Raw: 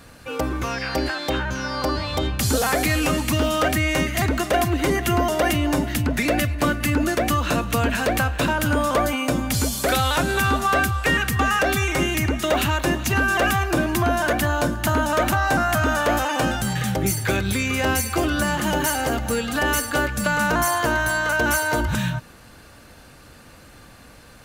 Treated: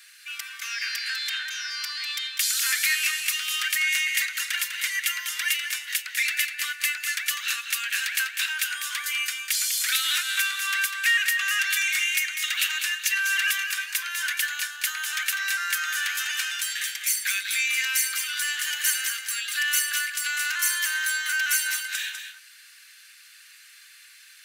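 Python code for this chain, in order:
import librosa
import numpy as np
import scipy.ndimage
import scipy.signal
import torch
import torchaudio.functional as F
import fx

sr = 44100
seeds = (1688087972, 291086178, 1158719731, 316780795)

y = scipy.signal.sosfilt(scipy.signal.butter(6, 1700.0, 'highpass', fs=sr, output='sos'), x)
y = y + 10.0 ** (-8.0 / 20.0) * np.pad(y, (int(199 * sr / 1000.0), 0))[:len(y)]
y = y * librosa.db_to_amplitude(2.0)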